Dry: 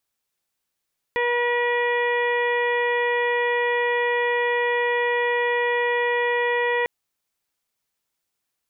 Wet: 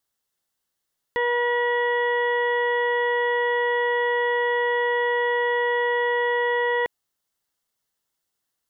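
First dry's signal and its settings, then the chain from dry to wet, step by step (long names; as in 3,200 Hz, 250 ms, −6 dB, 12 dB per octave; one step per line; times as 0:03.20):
steady harmonic partials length 5.70 s, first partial 482 Hz, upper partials −4/−17/−1.5/−9.5/−19/−19 dB, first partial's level −22.5 dB
notch filter 2,400 Hz, Q 5.3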